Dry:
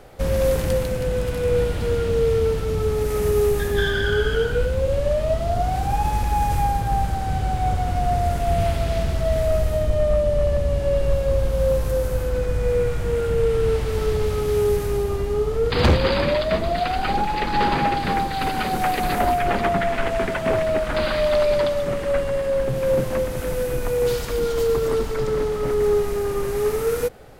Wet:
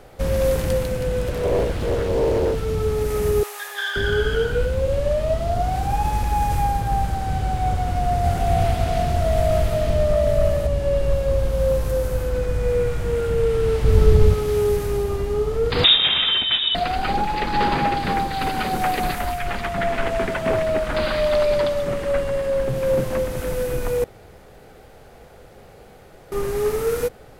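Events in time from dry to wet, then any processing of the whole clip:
1.28–2.55 s: loudspeaker Doppler distortion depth 0.88 ms
3.43–3.96 s: high-pass 760 Hz 24 dB/octave
7.33–10.67 s: delay 910 ms -3 dB
13.84–14.34 s: bass shelf 280 Hz +12 dB
15.84–16.75 s: frequency inversion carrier 3.7 kHz
19.11–19.78 s: peaking EQ 380 Hz -10.5 dB 2.6 oct
24.04–26.32 s: room tone

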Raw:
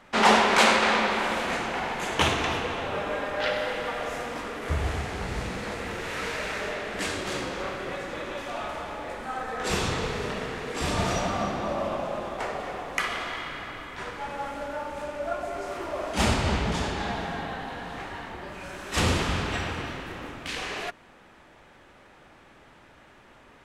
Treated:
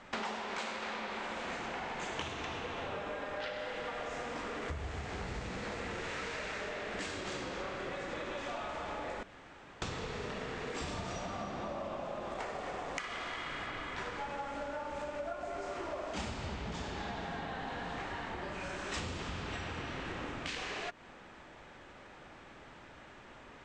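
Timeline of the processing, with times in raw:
9.23–9.82 s: room tone
12.29–13.67 s: short-mantissa float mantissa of 2-bit
whole clip: steep low-pass 8.2 kHz 48 dB/octave; compression 16:1, threshold -36 dBFS

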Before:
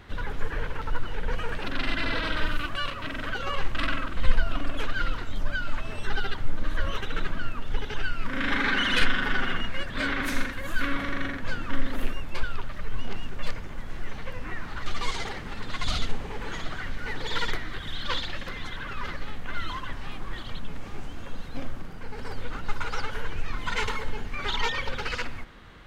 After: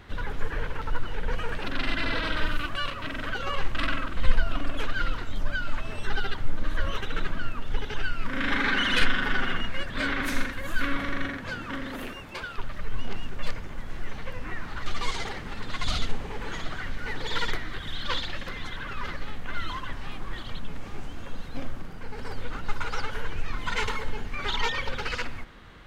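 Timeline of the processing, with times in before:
11.25–12.57 s: high-pass 57 Hz -> 240 Hz 6 dB/octave

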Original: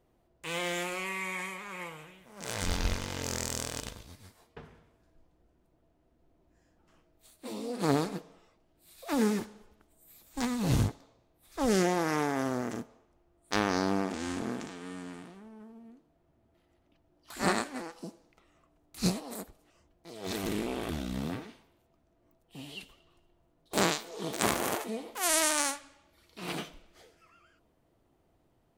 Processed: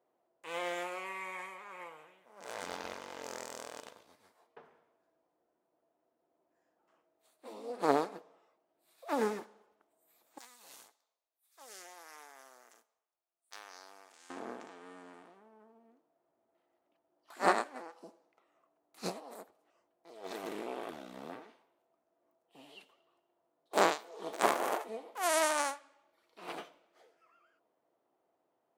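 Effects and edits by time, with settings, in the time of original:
10.38–14.30 s: differentiator
whole clip: high-pass 670 Hz 12 dB/octave; tilt shelf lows +9 dB, about 1.4 kHz; upward expansion 1.5:1, over -41 dBFS; trim +2.5 dB

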